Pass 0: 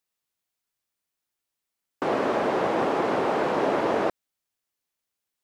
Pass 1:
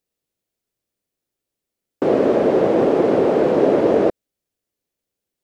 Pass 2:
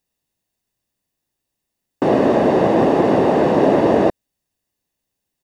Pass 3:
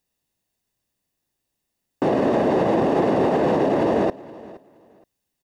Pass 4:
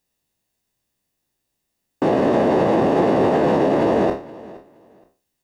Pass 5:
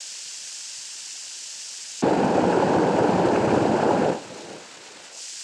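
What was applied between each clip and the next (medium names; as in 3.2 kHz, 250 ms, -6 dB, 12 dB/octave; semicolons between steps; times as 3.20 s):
resonant low shelf 690 Hz +9 dB, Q 1.5
comb 1.1 ms, depth 45%; trim +3.5 dB
peak limiter -11.5 dBFS, peak gain reduction 9.5 dB; feedback delay 470 ms, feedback 21%, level -20 dB
spectral sustain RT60 0.37 s; trim +1 dB
zero-crossing glitches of -19 dBFS; noise-vocoded speech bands 8; trim -2.5 dB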